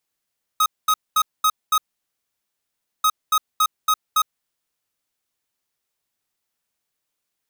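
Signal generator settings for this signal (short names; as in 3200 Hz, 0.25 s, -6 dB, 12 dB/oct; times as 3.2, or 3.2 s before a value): beep pattern square 1260 Hz, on 0.06 s, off 0.22 s, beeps 5, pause 1.26 s, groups 2, -16.5 dBFS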